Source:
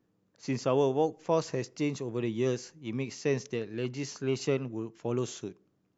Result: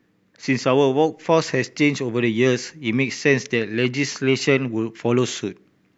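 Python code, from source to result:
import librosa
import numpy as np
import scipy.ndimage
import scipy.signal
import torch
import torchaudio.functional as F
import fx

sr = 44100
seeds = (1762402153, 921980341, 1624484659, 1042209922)

p1 = fx.graphic_eq(x, sr, hz=(250, 2000, 4000), db=(4, 12, 4))
p2 = fx.rider(p1, sr, range_db=10, speed_s=0.5)
p3 = p1 + F.gain(torch.from_numpy(p2), -1.0).numpy()
y = F.gain(torch.from_numpy(p3), 3.0).numpy()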